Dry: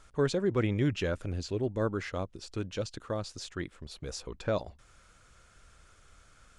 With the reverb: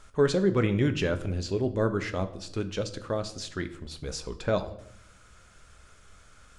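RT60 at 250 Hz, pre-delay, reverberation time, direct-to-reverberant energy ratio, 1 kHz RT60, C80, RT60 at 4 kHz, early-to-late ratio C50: 1.0 s, 5 ms, 0.70 s, 8.0 dB, 0.65 s, 17.5 dB, 0.55 s, 14.0 dB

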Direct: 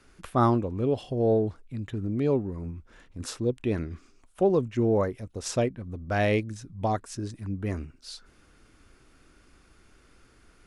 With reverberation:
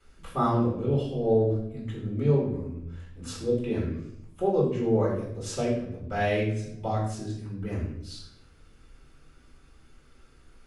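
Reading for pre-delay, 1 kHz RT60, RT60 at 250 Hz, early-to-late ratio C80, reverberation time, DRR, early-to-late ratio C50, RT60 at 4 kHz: 3 ms, 0.65 s, 1.0 s, 6.5 dB, 0.75 s, −8.0 dB, 3.0 dB, 0.60 s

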